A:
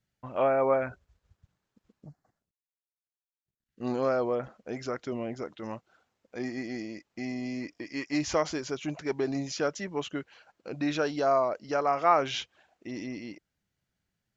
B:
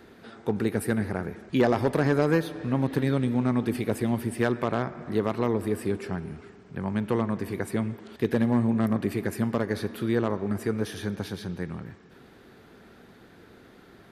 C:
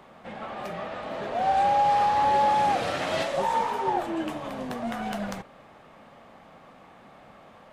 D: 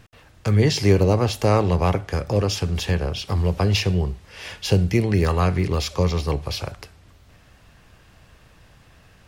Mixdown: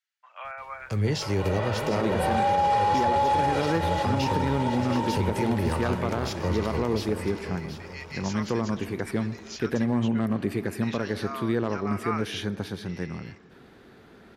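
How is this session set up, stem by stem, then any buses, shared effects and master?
+2.0 dB, 0.00 s, no send, no echo send, Bessel high-pass 1700 Hz, order 4; high shelf 4800 Hz -8.5 dB
+0.5 dB, 1.40 s, no send, no echo send, high shelf 10000 Hz -7.5 dB
+3.0 dB, 0.80 s, no send, echo send -13.5 dB, comb 2.1 ms, depth 94%; auto duck -11 dB, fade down 0.25 s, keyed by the first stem
-8.0 dB, 0.45 s, no send, echo send -10.5 dB, dry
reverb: off
echo: feedback echo 0.726 s, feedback 46%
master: limiter -15.5 dBFS, peak gain reduction 10 dB

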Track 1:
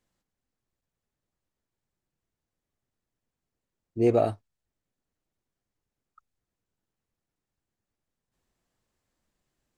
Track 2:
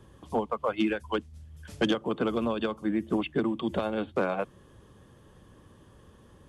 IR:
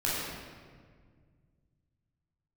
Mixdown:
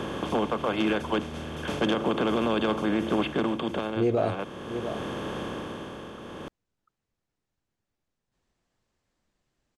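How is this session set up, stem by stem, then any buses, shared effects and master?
+2.5 dB, 0.00 s, no send, echo send -15 dB, LPF 7100 Hz
+0.5 dB, 0.00 s, no send, no echo send, per-bin compression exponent 0.4; auto duck -9 dB, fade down 0.75 s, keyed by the first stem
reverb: off
echo: echo 0.696 s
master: limiter -16 dBFS, peak gain reduction 7.5 dB

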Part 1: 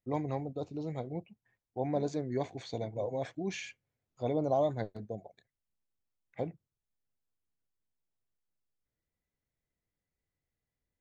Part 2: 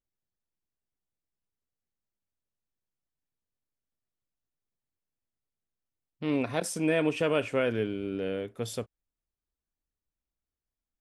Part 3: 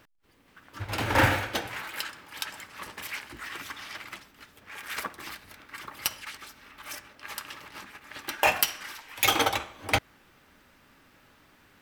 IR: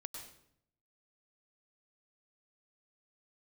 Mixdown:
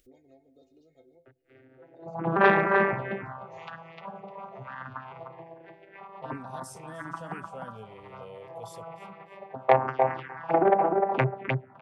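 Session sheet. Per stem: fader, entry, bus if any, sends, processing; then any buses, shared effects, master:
-17.0 dB, 0.00 s, send -9 dB, echo send -18 dB, metallic resonator 78 Hz, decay 0.34 s, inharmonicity 0.03
-9.5 dB, 0.00 s, no send, echo send -18 dB, dry
+2.5 dB, 1.25 s, no send, echo send -4.5 dB, arpeggiated vocoder major triad, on C3, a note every 0.551 s; LPF 4700 Hz 12 dB/oct; LFO low-pass sine 0.93 Hz 670–2100 Hz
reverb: on, RT60 0.70 s, pre-delay 93 ms
echo: feedback echo 0.303 s, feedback 21%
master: upward compressor, threshold -45 dBFS; envelope phaser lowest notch 160 Hz, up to 3700 Hz, full sweep at -20 dBFS; core saturation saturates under 930 Hz

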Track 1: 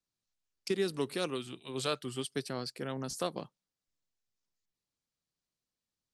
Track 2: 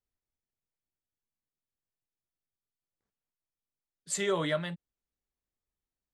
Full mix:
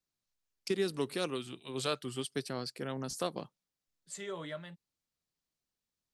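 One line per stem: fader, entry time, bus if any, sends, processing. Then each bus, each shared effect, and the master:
-0.5 dB, 0.00 s, no send, dry
-11.5 dB, 0.00 s, no send, dry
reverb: off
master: dry

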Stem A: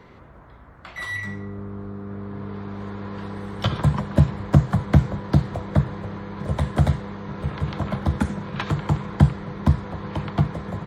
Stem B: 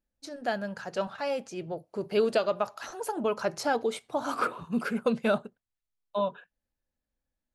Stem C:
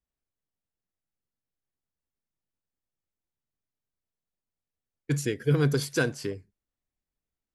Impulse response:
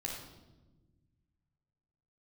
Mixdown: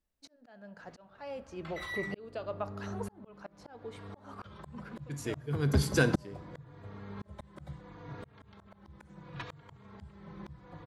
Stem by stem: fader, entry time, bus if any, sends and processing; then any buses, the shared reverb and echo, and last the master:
-4.5 dB, 0.80 s, no send, endless flanger 3.6 ms -0.71 Hz
-4.0 dB, 0.00 s, send -16.5 dB, high shelf 4800 Hz -12 dB; auto duck -11 dB, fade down 0.30 s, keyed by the third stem
-0.5 dB, 0.00 s, send -11.5 dB, dry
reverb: on, pre-delay 12 ms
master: auto swell 0.761 s

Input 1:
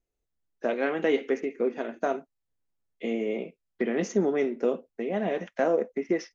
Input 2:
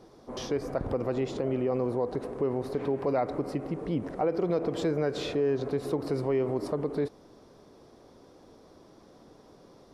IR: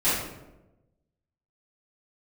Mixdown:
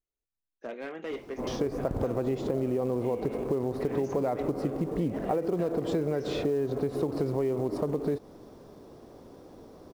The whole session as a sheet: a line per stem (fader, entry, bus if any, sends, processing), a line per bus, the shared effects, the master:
-10.5 dB, 0.00 s, no send, hard clip -20 dBFS, distortion -16 dB
+2.0 dB, 1.10 s, no send, companded quantiser 6-bit; tilt shelf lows +4 dB, about 1200 Hz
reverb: off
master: compressor, threshold -25 dBFS, peak gain reduction 8 dB

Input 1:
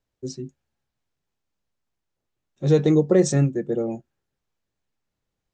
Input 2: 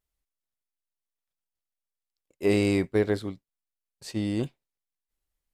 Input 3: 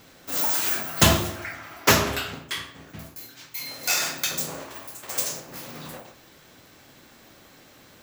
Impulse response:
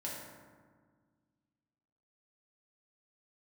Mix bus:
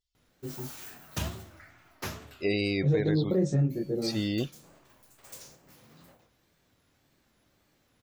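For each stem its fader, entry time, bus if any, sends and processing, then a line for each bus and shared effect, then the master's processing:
-7.0 dB, 0.20 s, send -24 dB, tilt -2.5 dB/oct; detuned doubles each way 39 cents
-2.0 dB, 0.00 s, no send, bell 4500 Hz +11 dB 2.1 oct; loudest bins only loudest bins 64
-19.0 dB, 0.15 s, no send, low shelf 140 Hz +10.5 dB; wow and flutter 140 cents; ending taper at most 160 dB/s; auto duck -6 dB, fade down 0.35 s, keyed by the second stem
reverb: on, RT60 1.6 s, pre-delay 3 ms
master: limiter -17.5 dBFS, peak gain reduction 9 dB

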